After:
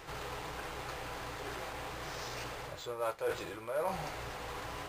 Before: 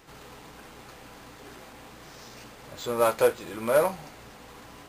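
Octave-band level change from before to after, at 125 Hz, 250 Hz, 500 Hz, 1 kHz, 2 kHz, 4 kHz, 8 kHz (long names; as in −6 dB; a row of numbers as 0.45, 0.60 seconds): −1.5, −9.5, −11.5, −6.0, −4.0, −1.5, −6.5 decibels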